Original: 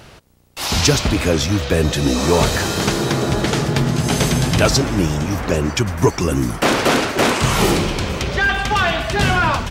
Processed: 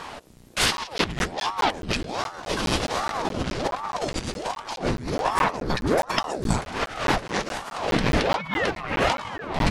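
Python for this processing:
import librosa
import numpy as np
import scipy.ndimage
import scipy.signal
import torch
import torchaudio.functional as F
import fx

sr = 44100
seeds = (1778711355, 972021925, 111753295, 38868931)

y = fx.over_compress(x, sr, threshold_db=-23.0, ratio=-0.5)
y = fx.formant_shift(y, sr, semitones=-5)
y = fx.buffer_crackle(y, sr, first_s=0.77, period_s=0.21, block=512, kind='zero')
y = fx.ring_lfo(y, sr, carrier_hz=550.0, swing_pct=90, hz=1.3)
y = y * 10.0 ** (1.0 / 20.0)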